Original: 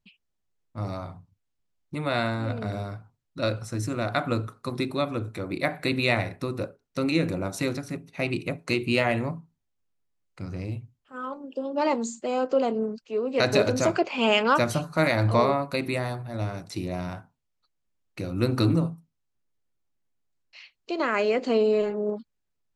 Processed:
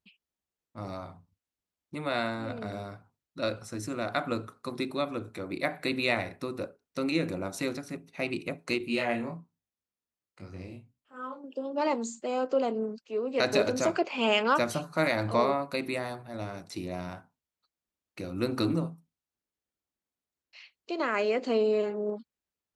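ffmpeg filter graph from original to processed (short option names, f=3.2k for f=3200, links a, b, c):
-filter_complex "[0:a]asettb=1/sr,asplit=3[a][b][c];[a]atrim=end=8.784[d];[b]atrim=start=8.78:end=11.44,asetpts=PTS-STARTPTS,afade=t=in:d=0.004:c=qsin,afade=t=out:st=2.656:d=0.004:c=qsin,flanger=delay=19.5:depth=6.4:speed=1.2,asplit=2[e][f];[f]adelay=30,volume=-10dB[g];[e][g]amix=inputs=2:normalize=0,atrim=end_sample=117306[h];[c]atrim=start=11.436[i];[d][h]acrossfade=d=0.004:c1=hsin:c2=qsin[j];[j][i]acrossfade=d=0.004:c1=qsin:c2=hsin,highpass=57,equalizer=f=120:w=2.1:g=-9.5,volume=-3.5dB"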